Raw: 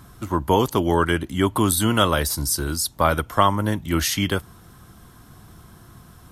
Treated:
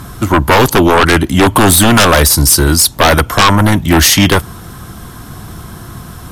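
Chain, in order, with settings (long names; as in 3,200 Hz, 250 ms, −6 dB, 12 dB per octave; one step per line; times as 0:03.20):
sine wavefolder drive 15 dB, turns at −1.5 dBFS
level −1.5 dB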